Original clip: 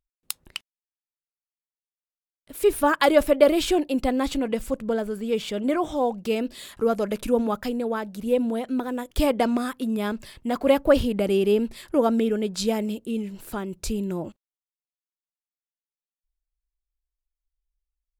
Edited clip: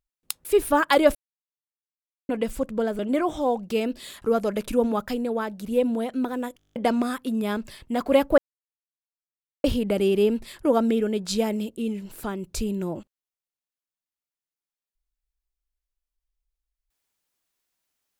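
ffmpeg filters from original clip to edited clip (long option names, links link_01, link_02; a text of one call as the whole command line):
ffmpeg -i in.wav -filter_complex "[0:a]asplit=15[link_01][link_02][link_03][link_04][link_05][link_06][link_07][link_08][link_09][link_10][link_11][link_12][link_13][link_14][link_15];[link_01]atrim=end=0.452[link_16];[link_02]atrim=start=2.558:end=3.26,asetpts=PTS-STARTPTS,afade=type=out:start_time=0.698:duration=0.004:curve=hsin[link_17];[link_03]atrim=start=3.26:end=4.4,asetpts=PTS-STARTPTS,volume=0[link_18];[link_04]atrim=start=4.4:end=5.102,asetpts=PTS-STARTPTS,afade=type=in:duration=0.004:curve=hsin[link_19];[link_05]atrim=start=5.538:end=9.152[link_20];[link_06]atrim=start=9.128:end=9.152[link_21];[link_07]atrim=start=9.128:end=9.152[link_22];[link_08]atrim=start=9.128:end=9.152[link_23];[link_09]atrim=start=9.128:end=9.152[link_24];[link_10]atrim=start=9.128:end=9.152[link_25];[link_11]atrim=start=9.128:end=9.152[link_26];[link_12]atrim=start=9.128:end=9.152[link_27];[link_13]atrim=start=9.128:end=9.152[link_28];[link_14]atrim=start=9.308:end=10.93,asetpts=PTS-STARTPTS,afade=type=out:start_time=1.618:duration=0.004:curve=hsin,apad=pad_dur=1.26[link_29];[link_15]atrim=start=10.93,asetpts=PTS-STARTPTS,afade=type=in:duration=0.004:curve=hsin[link_30];[link_17][link_18][link_19]concat=n=3:v=0:a=1[link_31];[link_16][link_31]acrossfade=duration=0.004:curve1=hsin:curve2=hsin[link_32];[link_32][link_20]acrossfade=duration=0.004:curve1=hsin:curve2=hsin[link_33];[link_33][link_21]acrossfade=duration=0.004:curve1=hsin:curve2=hsin[link_34];[link_34][link_22]acrossfade=duration=0.004:curve1=hsin:curve2=hsin[link_35];[link_35][link_23]acrossfade=duration=0.004:curve1=hsin:curve2=hsin[link_36];[link_36][link_24]acrossfade=duration=0.004:curve1=hsin:curve2=hsin[link_37];[link_37][link_25]acrossfade=duration=0.004:curve1=hsin:curve2=hsin[link_38];[link_38][link_26]acrossfade=duration=0.004:curve1=hsin:curve2=hsin[link_39];[link_39][link_27]acrossfade=duration=0.004:curve1=hsin:curve2=hsin[link_40];[link_40][link_28]acrossfade=duration=0.004:curve1=hsin:curve2=hsin[link_41];[link_29][link_30]concat=n=2:v=0:a=1[link_42];[link_41][link_42]acrossfade=duration=0.004:curve1=hsin:curve2=hsin" out.wav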